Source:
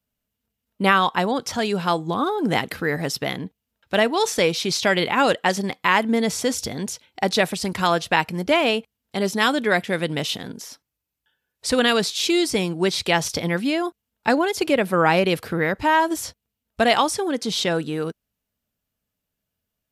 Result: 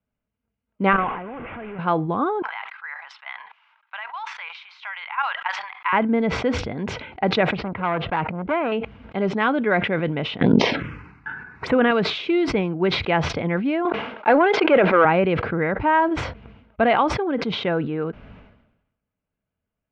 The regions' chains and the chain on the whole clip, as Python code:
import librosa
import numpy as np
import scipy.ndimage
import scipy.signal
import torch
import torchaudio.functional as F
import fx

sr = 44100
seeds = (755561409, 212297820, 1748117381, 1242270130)

y = fx.chain(x, sr, fx.delta_mod(bps=16000, step_db=-18.5),
    fx.notch(hz=930.0, q=30.0),
    fx.level_steps(step_db=17), at=(0.93, 1.79))
y = fx.chain(y, sr, fx.ellip_highpass(hz=910.0, order=4, stop_db=60),
    fx.level_steps(step_db=10), at=(2.42, 5.93))
y = fx.chain(y, sr, fx.air_absorb(metres=260.0),
    fx.transformer_sat(knee_hz=1800.0), at=(7.55, 8.72))
y = fx.chain(y, sr, fx.highpass(hz=100.0, slope=12),
    fx.env_phaser(low_hz=550.0, high_hz=4800.0, full_db=-26.0),
    fx.env_flatten(amount_pct=100), at=(10.41, 11.91))
y = fx.chain(y, sr, fx.leveller(passes=2),
    fx.bandpass_edges(low_hz=400.0, high_hz=5100.0),
    fx.sustainer(db_per_s=39.0), at=(13.85, 15.05))
y = scipy.signal.sosfilt(scipy.signal.butter(4, 2300.0, 'lowpass', fs=sr, output='sos'), y)
y = fx.notch(y, sr, hz=1800.0, q=10.0)
y = fx.sustainer(y, sr, db_per_s=62.0)